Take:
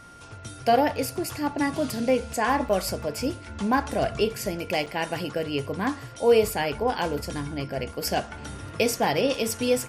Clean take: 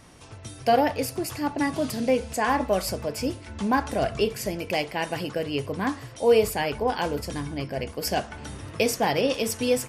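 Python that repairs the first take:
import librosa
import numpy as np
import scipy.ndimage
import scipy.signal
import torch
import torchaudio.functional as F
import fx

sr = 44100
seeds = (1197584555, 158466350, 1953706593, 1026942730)

y = fx.notch(x, sr, hz=1400.0, q=30.0)
y = fx.fix_interpolate(y, sr, at_s=(2.69, 4.86), length_ms=5.9)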